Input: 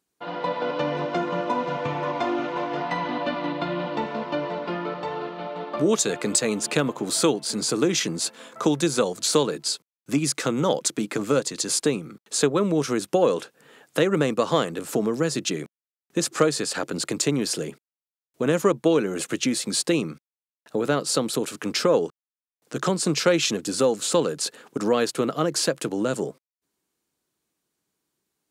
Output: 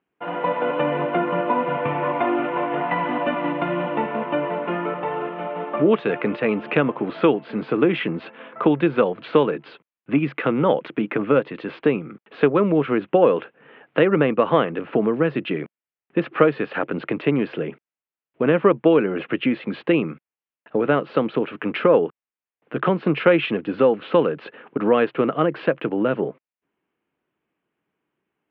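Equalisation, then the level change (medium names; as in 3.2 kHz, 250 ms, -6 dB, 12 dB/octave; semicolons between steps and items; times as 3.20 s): steep low-pass 2.9 kHz 48 dB/octave; bass shelf 70 Hz -11.5 dB; +4.5 dB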